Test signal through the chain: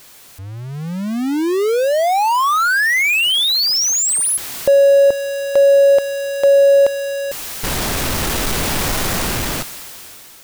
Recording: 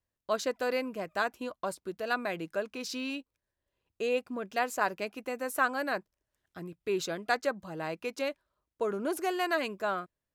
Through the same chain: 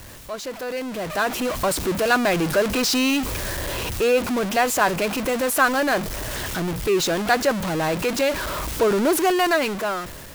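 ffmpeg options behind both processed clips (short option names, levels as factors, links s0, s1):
-af "aeval=exprs='val(0)+0.5*0.0355*sgn(val(0))':c=same,dynaudnorm=f=340:g=7:m=7.08,volume=0.596"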